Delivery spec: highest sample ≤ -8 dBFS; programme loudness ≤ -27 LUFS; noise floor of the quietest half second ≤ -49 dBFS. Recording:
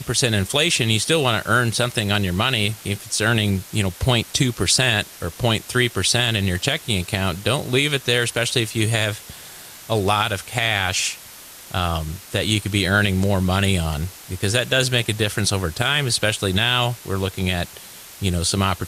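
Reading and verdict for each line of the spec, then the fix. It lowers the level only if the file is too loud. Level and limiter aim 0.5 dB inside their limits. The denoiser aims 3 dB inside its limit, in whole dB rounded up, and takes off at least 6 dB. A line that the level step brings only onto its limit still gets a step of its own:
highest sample -4.5 dBFS: fail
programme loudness -20.0 LUFS: fail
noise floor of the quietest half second -41 dBFS: fail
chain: noise reduction 6 dB, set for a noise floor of -41 dBFS; trim -7.5 dB

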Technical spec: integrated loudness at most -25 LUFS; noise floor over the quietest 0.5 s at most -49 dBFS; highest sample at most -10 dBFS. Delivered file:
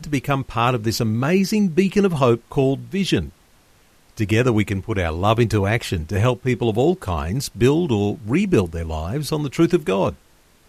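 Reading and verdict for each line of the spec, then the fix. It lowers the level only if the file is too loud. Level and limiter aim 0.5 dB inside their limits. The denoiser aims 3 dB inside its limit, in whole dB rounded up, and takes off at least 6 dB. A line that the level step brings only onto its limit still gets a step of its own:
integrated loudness -20.5 LUFS: fail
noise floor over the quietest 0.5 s -54 dBFS: pass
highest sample -3.5 dBFS: fail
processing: trim -5 dB; peak limiter -10.5 dBFS

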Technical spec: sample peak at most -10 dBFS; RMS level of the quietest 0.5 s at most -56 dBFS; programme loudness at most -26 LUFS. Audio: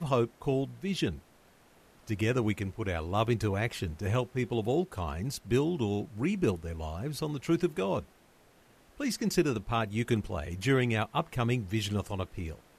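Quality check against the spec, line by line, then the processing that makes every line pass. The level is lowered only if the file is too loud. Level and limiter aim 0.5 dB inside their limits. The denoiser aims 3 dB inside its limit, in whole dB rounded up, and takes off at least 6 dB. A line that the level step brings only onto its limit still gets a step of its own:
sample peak -13.5 dBFS: pass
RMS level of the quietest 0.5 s -61 dBFS: pass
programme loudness -31.5 LUFS: pass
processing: none needed

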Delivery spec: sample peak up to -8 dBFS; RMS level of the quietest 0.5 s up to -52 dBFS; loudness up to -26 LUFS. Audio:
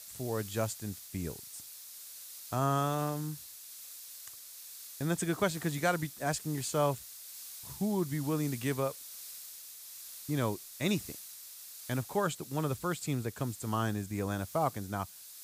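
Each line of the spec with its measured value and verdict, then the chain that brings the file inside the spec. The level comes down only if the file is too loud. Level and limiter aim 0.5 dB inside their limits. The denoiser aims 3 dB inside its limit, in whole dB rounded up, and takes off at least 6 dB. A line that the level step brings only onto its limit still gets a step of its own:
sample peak -15.5 dBFS: pass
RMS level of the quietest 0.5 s -49 dBFS: fail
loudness -35.0 LUFS: pass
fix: noise reduction 6 dB, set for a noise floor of -49 dBFS

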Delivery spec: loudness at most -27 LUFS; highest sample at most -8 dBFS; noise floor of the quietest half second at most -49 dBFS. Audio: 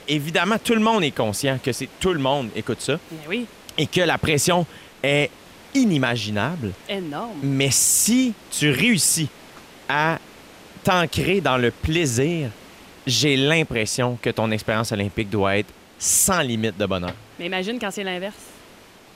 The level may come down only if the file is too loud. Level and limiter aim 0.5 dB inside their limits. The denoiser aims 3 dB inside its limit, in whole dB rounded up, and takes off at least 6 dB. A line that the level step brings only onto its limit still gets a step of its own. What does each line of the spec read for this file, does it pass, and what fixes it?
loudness -21.0 LUFS: fail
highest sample -6.5 dBFS: fail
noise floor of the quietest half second -47 dBFS: fail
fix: trim -6.5 dB

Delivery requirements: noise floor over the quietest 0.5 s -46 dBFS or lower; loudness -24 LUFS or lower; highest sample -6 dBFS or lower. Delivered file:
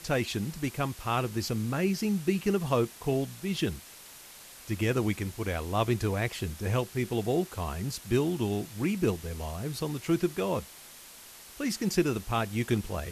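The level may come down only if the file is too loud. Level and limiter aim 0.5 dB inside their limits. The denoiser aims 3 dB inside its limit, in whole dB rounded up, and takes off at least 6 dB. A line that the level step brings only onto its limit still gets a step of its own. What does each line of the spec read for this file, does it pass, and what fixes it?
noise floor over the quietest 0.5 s -49 dBFS: pass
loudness -30.5 LUFS: pass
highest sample -13.0 dBFS: pass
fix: none needed

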